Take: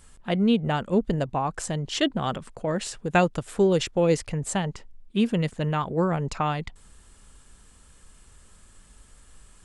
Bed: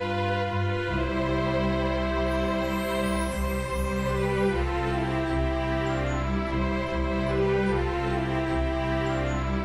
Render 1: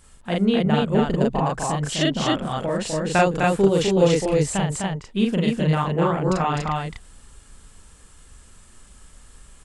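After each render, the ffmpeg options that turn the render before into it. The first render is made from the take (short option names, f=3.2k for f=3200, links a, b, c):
-af "aecho=1:1:40.82|253.6|285.7:0.891|0.631|0.794"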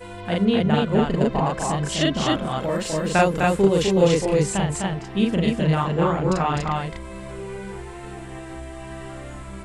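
-filter_complex "[1:a]volume=-9.5dB[a];[0:a][a]amix=inputs=2:normalize=0"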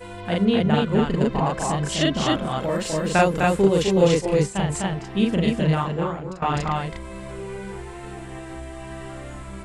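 -filter_complex "[0:a]asettb=1/sr,asplit=3[a][b][c];[a]atrim=end=0.814[d];[b]atrim=start=0.81:end=1.41,asetpts=PTS-STARTPTS,afade=t=in:d=0.004:c=qsin,afade=t=out:st=0.596:d=0.004:c=qsin,equalizer=f=660:t=o:w=0.45:g=-6.5[e];[c]atrim=start=1.406[f];[d][e]acrossfade=d=0.004:c1=hsin:c2=qsin[g];[g][f]acrossfade=d=0.004:c1=qsin:c2=hsin,asettb=1/sr,asplit=3[h][i][j];[h]atrim=end=3.644[k];[i]atrim=start=3.64:end=4.66,asetpts=PTS-STARTPTS,afade=t=in:d=0.004:c=qsin,afade=t=out:st=1.016:d=0.004:c=qsin,agate=range=-33dB:threshold=-21dB:ratio=3:release=100:detection=peak[l];[j]atrim=start=4.656[m];[k][l]acrossfade=d=0.004:c1=hsin:c2=qsin[n];[n][m]acrossfade=d=0.004:c1=qsin:c2=hsin,asplit=2[o][p];[o]atrim=end=6.42,asetpts=PTS-STARTPTS,afade=t=out:st=5.68:d=0.74:silence=0.105925[q];[p]atrim=start=6.42,asetpts=PTS-STARTPTS,afade=t=in:d=0.004:c=hsin:silence=0.105925[r];[q][r]concat=n=2:v=0:a=1"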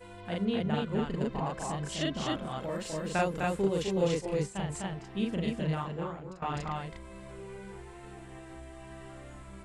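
-af "volume=-11dB"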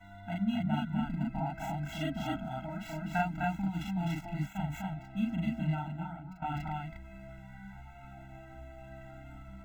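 -filter_complex "[0:a]acrossover=split=4200[a][b];[b]acrusher=samples=9:mix=1:aa=0.000001[c];[a][c]amix=inputs=2:normalize=0,afftfilt=real='re*eq(mod(floor(b*sr/1024/320),2),0)':imag='im*eq(mod(floor(b*sr/1024/320),2),0)':win_size=1024:overlap=0.75"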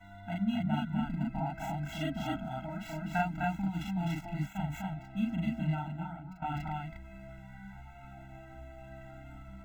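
-af anull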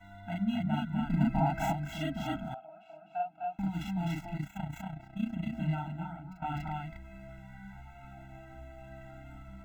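-filter_complex "[0:a]asettb=1/sr,asplit=3[a][b][c];[a]atrim=end=1.104[d];[b]atrim=start=1.1:end=1.73,asetpts=PTS-STARTPTS,afade=t=in:d=0.004:c=qsin,afade=t=out:st=0.626:d=0.004:c=qsin,acontrast=69[e];[c]atrim=start=1.726[f];[d][e]acrossfade=d=0.004:c1=hsin:c2=qsin[g];[g][f]acrossfade=d=0.004:c1=qsin:c2=hsin,asettb=1/sr,asplit=3[h][i][j];[h]atrim=end=2.544[k];[i]atrim=start=2.54:end=3.59,asetpts=PTS-STARTPTS,afade=t=in:d=0.004:c=qsin,afade=t=out:st=1.046:d=0.004:c=qsin,asplit=3[l][m][n];[l]bandpass=f=730:t=q:w=8,volume=0dB[o];[m]bandpass=f=1.09k:t=q:w=8,volume=-6dB[p];[n]bandpass=f=2.44k:t=q:w=8,volume=-9dB[q];[o][p][q]amix=inputs=3:normalize=0[r];[j]atrim=start=3.586[s];[k][r]acrossfade=d=0.004:c1=hsin:c2=qsin[t];[t][s]acrossfade=d=0.004:c1=qsin:c2=hsin,asettb=1/sr,asplit=3[u][v][w];[u]atrim=end=4.374[x];[v]atrim=start=4.37:end=5.55,asetpts=PTS-STARTPTS,afade=t=in:d=0.004:c=qsin,afade=t=out:st=1.176:d=0.004:c=qsin,tremolo=f=30:d=0.71[y];[w]atrim=start=5.546[z];[x][y]acrossfade=d=0.004:c1=hsin:c2=qsin[aa];[aa][z]acrossfade=d=0.004:c1=qsin:c2=hsin"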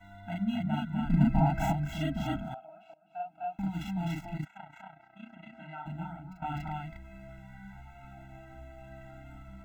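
-filter_complex "[0:a]asettb=1/sr,asplit=3[a][b][c];[a]atrim=end=1.044[d];[b]atrim=start=1.04:end=2.42,asetpts=PTS-STARTPTS,afade=t=in:d=0.004:c=qsin,afade=t=out:st=1.376:d=0.004:c=qsin,lowshelf=f=160:g=8.5[e];[c]atrim=start=2.416[f];[d][e]acrossfade=d=0.004:c1=hsin:c2=qsin[g];[g][f]acrossfade=d=0.004:c1=qsin:c2=hsin,asplit=3[h][i][j];[h]afade=t=out:st=4.44:d=0.02[k];[i]bandpass=f=1.3k:t=q:w=1,afade=t=in:st=4.44:d=0.02,afade=t=out:st=5.85:d=0.02[l];[j]afade=t=in:st=5.85:d=0.02[m];[k][l][m]amix=inputs=3:normalize=0,asplit=2[n][o];[n]atrim=end=2.94,asetpts=PTS-STARTPTS,afade=t=out:st=2.936:d=0.004:c=hsin:silence=0.0944061[p];[o]atrim=start=2.94,asetpts=PTS-STARTPTS,afade=t=in:d=0.45:silence=0.0944061[q];[p][q]concat=n=2:v=0:a=1"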